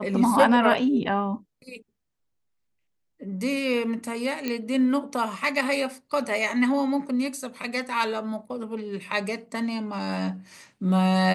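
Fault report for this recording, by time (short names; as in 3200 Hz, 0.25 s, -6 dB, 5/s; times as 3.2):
4.48 pop -14 dBFS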